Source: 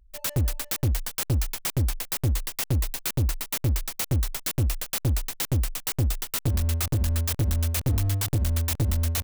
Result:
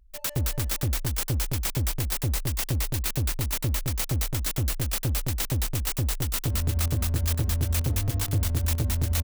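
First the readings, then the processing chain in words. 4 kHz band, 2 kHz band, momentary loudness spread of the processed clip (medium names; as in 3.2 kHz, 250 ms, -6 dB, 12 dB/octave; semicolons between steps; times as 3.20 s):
+0.5 dB, +0.5 dB, 2 LU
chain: compression, threshold -24 dBFS, peak gain reduction 3.5 dB; on a send: delay 217 ms -3 dB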